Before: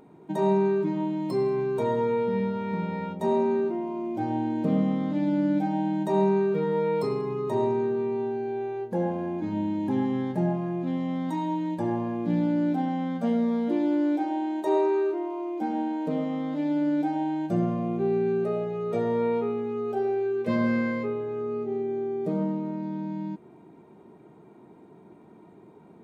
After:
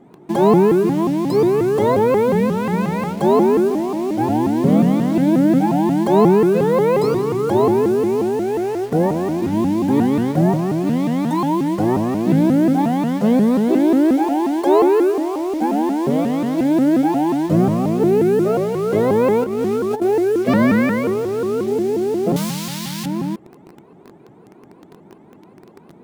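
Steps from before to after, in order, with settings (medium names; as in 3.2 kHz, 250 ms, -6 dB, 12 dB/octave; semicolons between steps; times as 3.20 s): in parallel at -4 dB: bit crusher 7-bit; 19.44–20.02 s: on the sum: compressor with a negative ratio -26 dBFS, ratio -0.5; 22.36–23.06 s: FFT filter 170 Hz 0 dB, 270 Hz -16 dB, 760 Hz -9 dB, 1.1 kHz +2 dB, 3.7 kHz +15 dB; vibrato with a chosen wave saw up 5.6 Hz, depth 250 cents; trim +6 dB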